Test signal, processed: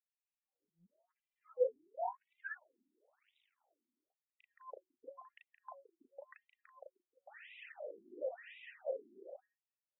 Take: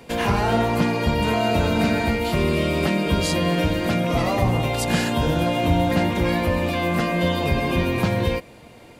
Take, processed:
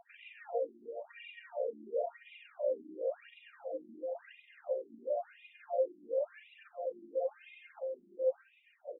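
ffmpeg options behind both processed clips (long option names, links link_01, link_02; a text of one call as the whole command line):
ffmpeg -i in.wav -filter_complex "[0:a]asplit=3[link_01][link_02][link_03];[link_01]bandpass=frequency=530:width_type=q:width=8,volume=0dB[link_04];[link_02]bandpass=frequency=1840:width_type=q:width=8,volume=-6dB[link_05];[link_03]bandpass=frequency=2480:width_type=q:width=8,volume=-9dB[link_06];[link_04][link_05][link_06]amix=inputs=3:normalize=0,asoftclip=type=tanh:threshold=-31dB,equalizer=frequency=5200:width=0.59:gain=-2.5,asplit=2[link_07][link_08];[link_08]adelay=36,volume=-2.5dB[link_09];[link_07][link_09]amix=inputs=2:normalize=0,bandreject=frequency=185.4:width_type=h:width=4,bandreject=frequency=370.8:width_type=h:width=4,bandreject=frequency=556.2:width_type=h:width=4,bandreject=frequency=741.6:width_type=h:width=4,bandreject=frequency=927:width_type=h:width=4,bandreject=frequency=1112.4:width_type=h:width=4,bandreject=frequency=1297.8:width_type=h:width=4,bandreject=frequency=1483.2:width_type=h:width=4,bandreject=frequency=1668.6:width_type=h:width=4,bandreject=frequency=1854:width_type=h:width=4,asplit=2[link_10][link_11];[link_11]adelay=170,highpass=300,lowpass=3400,asoftclip=type=hard:threshold=-35dB,volume=-8dB[link_12];[link_10][link_12]amix=inputs=2:normalize=0,acompressor=threshold=-45dB:ratio=2.5,aphaser=in_gain=1:out_gain=1:delay=4.3:decay=0.61:speed=0.9:type=triangular,equalizer=frequency=630:width_type=o:width=0.67:gain=10,equalizer=frequency=1600:width_type=o:width=0.67:gain=-6,equalizer=frequency=4000:width_type=o:width=0.67:gain=-7,afftfilt=real='re*between(b*sr/1024,260*pow(2800/260,0.5+0.5*sin(2*PI*0.96*pts/sr))/1.41,260*pow(2800/260,0.5+0.5*sin(2*PI*0.96*pts/sr))*1.41)':imag='im*between(b*sr/1024,260*pow(2800/260,0.5+0.5*sin(2*PI*0.96*pts/sr))/1.41,260*pow(2800/260,0.5+0.5*sin(2*PI*0.96*pts/sr))*1.41)':win_size=1024:overlap=0.75,volume=2dB" out.wav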